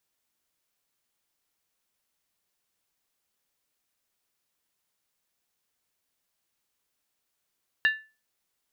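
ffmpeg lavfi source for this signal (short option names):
-f lavfi -i "aevalsrc='0.158*pow(10,-3*t/0.31)*sin(2*PI*1750*t)+0.0562*pow(10,-3*t/0.246)*sin(2*PI*2789.5*t)+0.02*pow(10,-3*t/0.212)*sin(2*PI*3738*t)+0.00708*pow(10,-3*t/0.205)*sin(2*PI*4018*t)+0.00251*pow(10,-3*t/0.19)*sin(2*PI*4642.8*t)':d=0.63:s=44100"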